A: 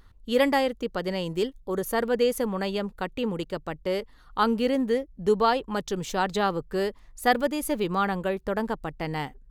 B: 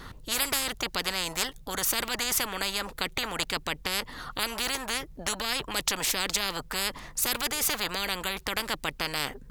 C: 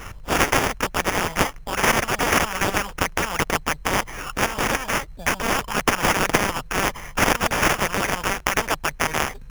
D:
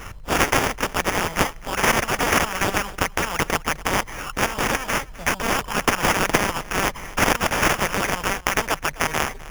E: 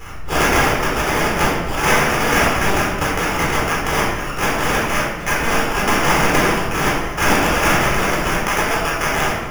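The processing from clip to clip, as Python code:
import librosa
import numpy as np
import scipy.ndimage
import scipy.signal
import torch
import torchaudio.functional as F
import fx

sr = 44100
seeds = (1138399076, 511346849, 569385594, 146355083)

y1 = fx.spectral_comp(x, sr, ratio=10.0)
y2 = fx.peak_eq(y1, sr, hz=310.0, db=-14.0, octaves=1.3)
y2 = fx.sample_hold(y2, sr, seeds[0], rate_hz=4100.0, jitter_pct=0)
y2 = y2 * librosa.db_to_amplitude(9.0)
y3 = fx.echo_feedback(y2, sr, ms=256, feedback_pct=16, wet_db=-19.0)
y4 = fx.room_shoebox(y3, sr, seeds[1], volume_m3=760.0, walls='mixed', distance_m=4.0)
y4 = y4 * librosa.db_to_amplitude(-4.5)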